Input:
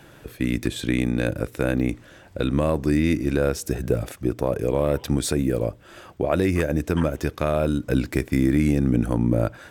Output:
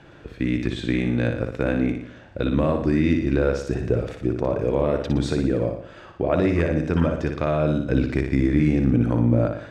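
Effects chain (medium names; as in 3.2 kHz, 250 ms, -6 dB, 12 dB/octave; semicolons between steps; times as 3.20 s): distance through air 140 m; flutter echo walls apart 10.1 m, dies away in 0.61 s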